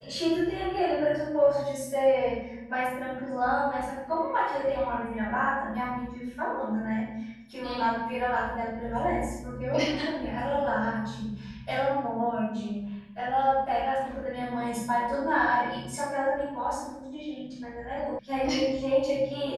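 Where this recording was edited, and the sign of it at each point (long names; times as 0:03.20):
0:18.19: cut off before it has died away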